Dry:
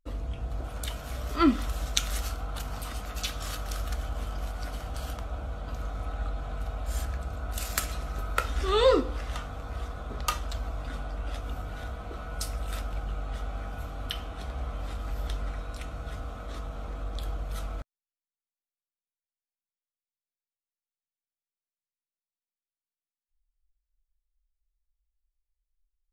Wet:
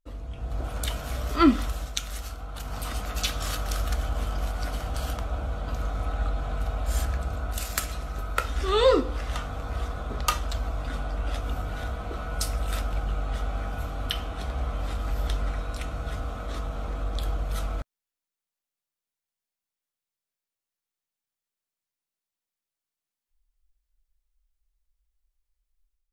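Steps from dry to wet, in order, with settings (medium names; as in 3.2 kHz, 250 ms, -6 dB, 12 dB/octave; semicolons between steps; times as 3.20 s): level rider gain up to 9 dB; trim -4 dB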